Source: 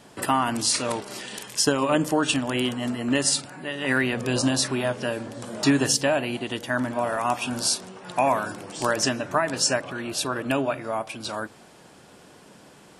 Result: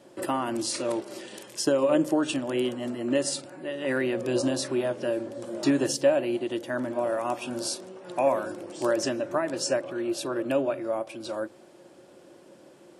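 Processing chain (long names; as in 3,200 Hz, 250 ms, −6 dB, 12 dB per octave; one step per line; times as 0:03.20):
high-pass filter 75 Hz
hollow resonant body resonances 350/540 Hz, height 16 dB, ringing for 60 ms
level −8.5 dB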